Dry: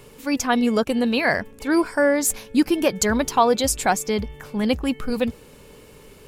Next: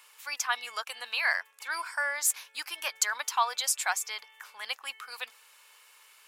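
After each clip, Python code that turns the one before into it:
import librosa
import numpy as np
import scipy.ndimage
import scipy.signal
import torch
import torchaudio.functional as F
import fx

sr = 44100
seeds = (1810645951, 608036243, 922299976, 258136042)

y = scipy.signal.sosfilt(scipy.signal.butter(4, 1000.0, 'highpass', fs=sr, output='sos'), x)
y = y * librosa.db_to_amplitude(-4.0)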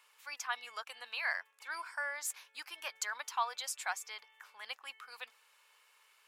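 y = fx.high_shelf(x, sr, hz=4900.0, db=-7.0)
y = y * librosa.db_to_amplitude(-7.0)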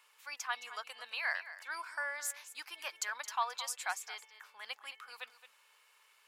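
y = x + 10.0 ** (-14.0 / 20.0) * np.pad(x, (int(218 * sr / 1000.0), 0))[:len(x)]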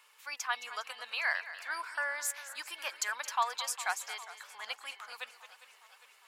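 y = fx.echo_warbled(x, sr, ms=406, feedback_pct=64, rate_hz=2.8, cents=72, wet_db=-17.0)
y = y * librosa.db_to_amplitude(3.5)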